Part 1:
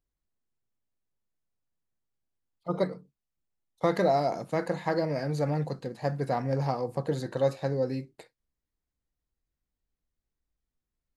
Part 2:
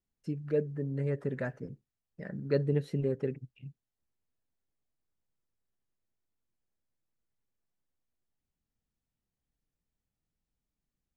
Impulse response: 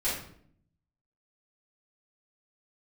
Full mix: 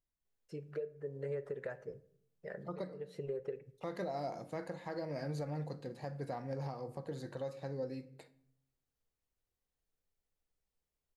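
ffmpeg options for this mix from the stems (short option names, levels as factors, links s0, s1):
-filter_complex "[0:a]volume=0.422,asplit=3[s0][s1][s2];[s1]volume=0.1[s3];[1:a]lowshelf=f=350:t=q:w=3:g=-7.5,acompressor=threshold=0.0251:ratio=10,adelay=250,volume=0.708,asplit=2[s4][s5];[s5]volume=0.075[s6];[s2]apad=whole_len=503344[s7];[s4][s7]sidechaincompress=threshold=0.00355:ratio=8:attack=16:release=120[s8];[2:a]atrim=start_sample=2205[s9];[s3][s6]amix=inputs=2:normalize=0[s10];[s10][s9]afir=irnorm=-1:irlink=0[s11];[s0][s8][s11]amix=inputs=3:normalize=0,alimiter=level_in=2:limit=0.0631:level=0:latency=1:release=393,volume=0.501"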